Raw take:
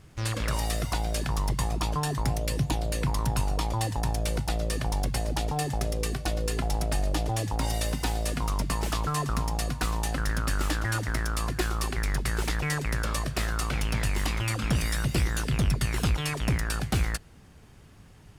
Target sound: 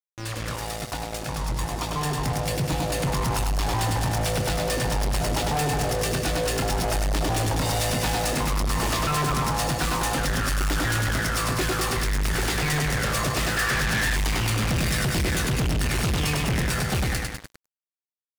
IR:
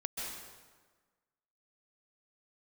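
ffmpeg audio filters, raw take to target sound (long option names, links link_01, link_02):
-filter_complex "[0:a]highshelf=frequency=6900:gain=-2.5,asplit=2[link_01][link_02];[link_02]adelay=24,volume=-11dB[link_03];[link_01][link_03]amix=inputs=2:normalize=0,asplit=2[link_04][link_05];[link_05]aecho=0:1:100|200|300|400|500|600|700|800:0.562|0.326|0.189|0.11|0.0636|0.0369|0.0214|0.0124[link_06];[link_04][link_06]amix=inputs=2:normalize=0,dynaudnorm=framelen=570:gausssize=9:maxgain=16dB,highpass=frequency=60:poles=1,aeval=exprs='sgn(val(0))*max(abs(val(0))-0.0237,0)':channel_layout=same,asettb=1/sr,asplit=3[link_07][link_08][link_09];[link_07]atrim=end=13.574[link_10];[link_08]atrim=start=13.57:end=14.16,asetpts=PTS-STARTPTS,afade=type=in:duration=0.004:curve=qsin,afade=type=out:start_time=0.586:duration=0.004:curve=qsin,equalizer=frequency=1700:width=5.2:gain=14[link_11];[link_09]atrim=start=14.156[link_12];[link_10][link_11]acrossfade=duration=0.004:curve1=hsin:curve2=qsin[link_13];[link_13][link_12]acrossfade=duration=0.004:curve1=qsin:curve2=hsin,asoftclip=type=tanh:threshold=-26.5dB,volume=5dB"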